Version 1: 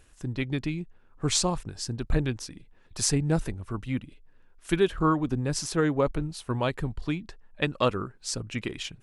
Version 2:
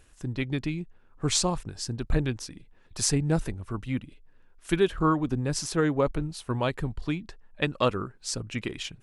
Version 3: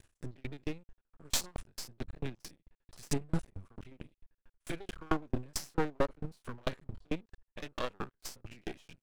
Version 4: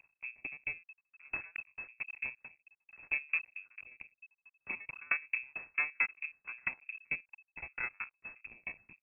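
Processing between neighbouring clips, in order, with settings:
no processing that can be heard
spectrum averaged block by block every 50 ms; half-wave rectification; tremolo with a ramp in dB decaying 4.5 Hz, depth 38 dB; level +5 dB
stylus tracing distortion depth 0.39 ms; voice inversion scrambler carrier 2,600 Hz; level −4.5 dB

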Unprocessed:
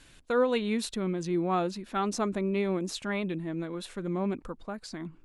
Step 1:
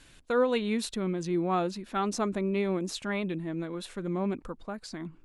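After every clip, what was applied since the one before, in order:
no processing that can be heard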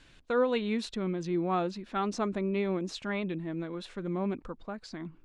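low-pass filter 5,400 Hz 12 dB per octave
level −1.5 dB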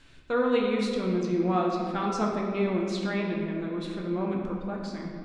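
convolution reverb RT60 2.2 s, pre-delay 7 ms, DRR −1.5 dB

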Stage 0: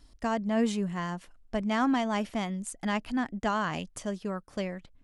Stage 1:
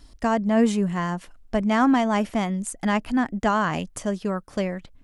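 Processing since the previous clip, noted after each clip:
dynamic equaliser 3,900 Hz, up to −5 dB, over −49 dBFS, Q 0.93
level +7.5 dB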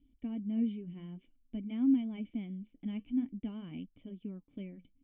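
flanger 0.52 Hz, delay 0.3 ms, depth 8.4 ms, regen −72%
formant resonators in series i
level −3 dB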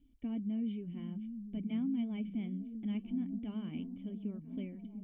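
brickwall limiter −31.5 dBFS, peak gain reduction 11.5 dB
echo through a band-pass that steps 699 ms, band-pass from 160 Hz, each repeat 0.7 octaves, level −5 dB
level +1 dB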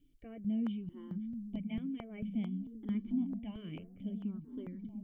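step-sequenced phaser 4.5 Hz 230–2,700 Hz
level +3 dB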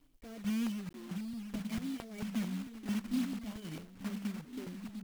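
one scale factor per block 3 bits

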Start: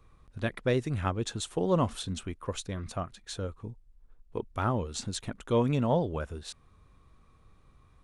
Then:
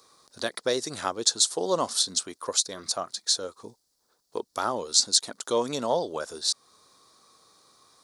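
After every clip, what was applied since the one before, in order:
high-pass filter 440 Hz 12 dB per octave
high shelf with overshoot 3,500 Hz +10 dB, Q 3
in parallel at −1 dB: downward compressor, threshold −38 dBFS, peak gain reduction 17.5 dB
on the sum: level +2.5 dB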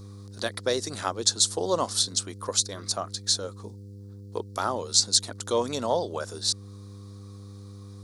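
hum with harmonics 100 Hz, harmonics 5, −43 dBFS −8 dB per octave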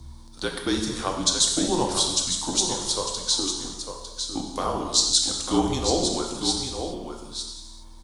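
frequency shifter −170 Hz
single-tap delay 902 ms −7.5 dB
reverb whose tail is shaped and stops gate 440 ms falling, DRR 1 dB

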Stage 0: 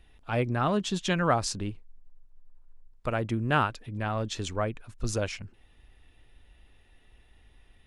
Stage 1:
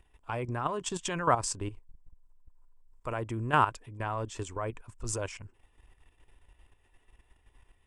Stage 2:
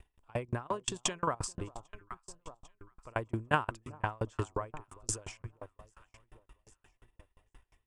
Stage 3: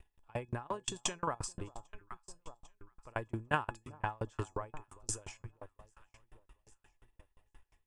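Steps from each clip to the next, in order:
thirty-one-band graphic EQ 200 Hz −10 dB, 400 Hz +3 dB, 1,000 Hz +10 dB, 4,000 Hz −9 dB, 8,000 Hz +11 dB; output level in coarse steps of 11 dB
delay that swaps between a low-pass and a high-pass 399 ms, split 1,100 Hz, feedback 59%, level −13 dB; tremolo with a ramp in dB decaying 5.7 Hz, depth 36 dB; level +6 dB
tuned comb filter 840 Hz, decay 0.15 s, harmonics all, mix 70%; level +6 dB

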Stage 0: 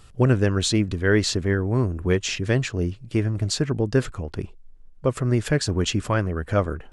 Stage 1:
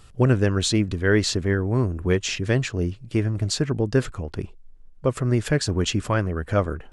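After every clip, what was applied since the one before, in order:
no processing that can be heard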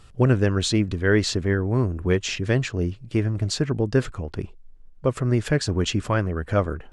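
high-shelf EQ 9,200 Hz −7.5 dB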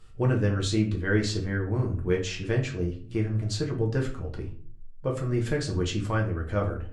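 rectangular room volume 33 cubic metres, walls mixed, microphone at 0.57 metres
level −9 dB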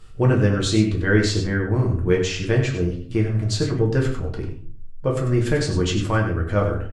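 single-tap delay 96 ms −9 dB
level +6.5 dB

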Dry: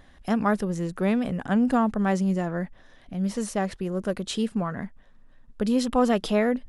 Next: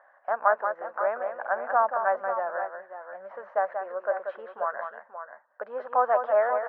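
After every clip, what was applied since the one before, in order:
elliptic band-pass filter 580–1,600 Hz, stop band 80 dB
on a send: multi-tap delay 185/535/543 ms −7/−10/−18.5 dB
on the sum: level +4.5 dB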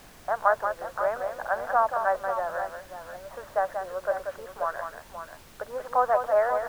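background noise pink −51 dBFS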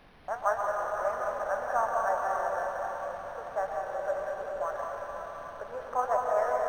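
convolution reverb RT60 4.9 s, pre-delay 108 ms, DRR 0 dB
flanger 1.6 Hz, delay 9.4 ms, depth 8.2 ms, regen −62%
linearly interpolated sample-rate reduction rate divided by 6×
level −1.5 dB

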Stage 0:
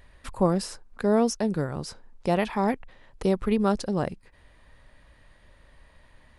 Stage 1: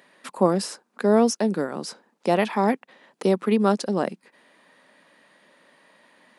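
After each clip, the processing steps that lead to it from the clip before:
Butterworth high-pass 190 Hz 36 dB per octave
level +4 dB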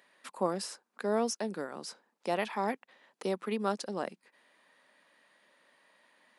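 low-shelf EQ 410 Hz −9 dB
level −7.5 dB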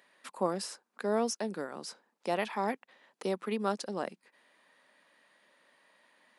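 no processing that can be heard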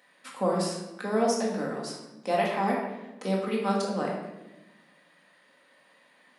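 rectangular room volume 460 cubic metres, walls mixed, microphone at 2 metres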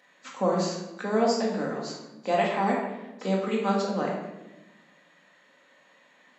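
hearing-aid frequency compression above 3,700 Hz 1.5 to 1
level +1.5 dB

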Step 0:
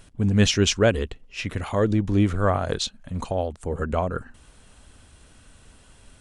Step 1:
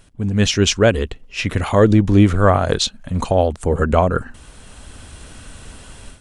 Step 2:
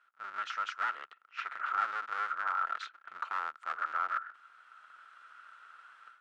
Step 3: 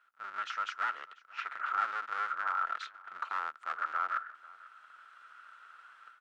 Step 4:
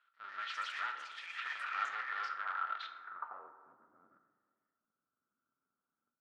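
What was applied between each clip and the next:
automatic gain control gain up to 13.5 dB
sub-harmonics by changed cycles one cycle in 2, inverted; brickwall limiter −10 dBFS, peak gain reduction 8.5 dB; four-pole ladder band-pass 1,400 Hz, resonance 85%; level −4.5 dB
single-tap delay 493 ms −21.5 dB
low-pass filter sweep 3,700 Hz → 230 Hz, 0:02.87–0:03.61; dense smooth reverb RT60 1.5 s, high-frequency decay 0.4×, DRR 6 dB; delay with pitch and tempo change per echo 139 ms, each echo +5 semitones, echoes 3, each echo −6 dB; level −8 dB

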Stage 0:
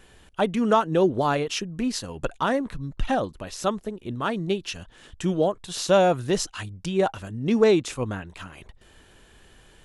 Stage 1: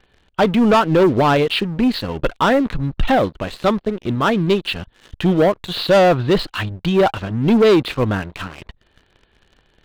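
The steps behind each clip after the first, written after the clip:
Butterworth low-pass 4,500 Hz 96 dB per octave
leveller curve on the samples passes 3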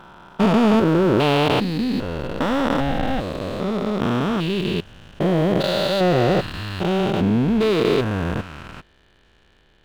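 spectrum averaged block by block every 400 ms
level +2 dB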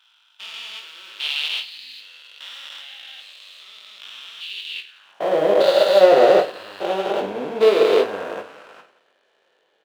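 high-pass filter sweep 3,100 Hz → 520 Hz, 0:04.70–0:05.31
reverse bouncing-ball delay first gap 20 ms, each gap 1.6×, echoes 5
expander for the loud parts 1.5 to 1, over −28 dBFS
level +1 dB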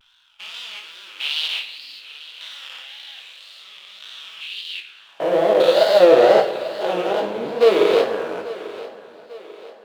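tape wow and flutter 120 cents
feedback echo with a high-pass in the loop 843 ms, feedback 50%, high-pass 190 Hz, level −17 dB
rectangular room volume 2,600 cubic metres, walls mixed, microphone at 0.65 metres

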